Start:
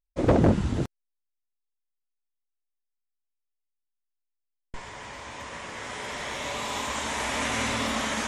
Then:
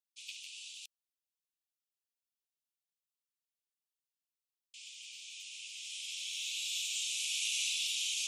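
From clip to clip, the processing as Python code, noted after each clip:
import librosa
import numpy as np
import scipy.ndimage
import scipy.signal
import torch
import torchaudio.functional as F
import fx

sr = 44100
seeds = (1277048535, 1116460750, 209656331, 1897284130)

y = scipy.signal.sosfilt(scipy.signal.butter(16, 2500.0, 'highpass', fs=sr, output='sos'), x)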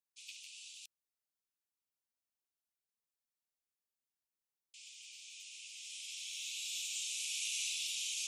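y = fx.peak_eq(x, sr, hz=3200.0, db=-4.0, octaves=0.8)
y = y * 10.0 ** (-2.0 / 20.0)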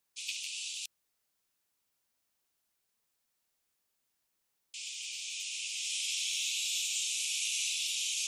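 y = fx.rider(x, sr, range_db=4, speed_s=0.5)
y = y * 10.0 ** (8.5 / 20.0)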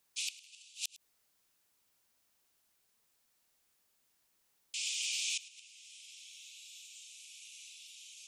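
y = fx.gate_flip(x, sr, shuts_db=-29.0, range_db=-24)
y = y + 10.0 ** (-18.5 / 20.0) * np.pad(y, (int(106 * sr / 1000.0), 0))[:len(y)]
y = y * 10.0 ** (5.0 / 20.0)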